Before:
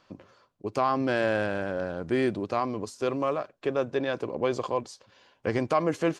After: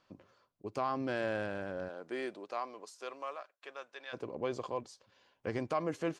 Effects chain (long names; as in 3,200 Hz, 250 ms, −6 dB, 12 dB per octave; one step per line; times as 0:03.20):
0:01.88–0:04.12: high-pass filter 340 Hz → 1,300 Hz 12 dB per octave
level −9 dB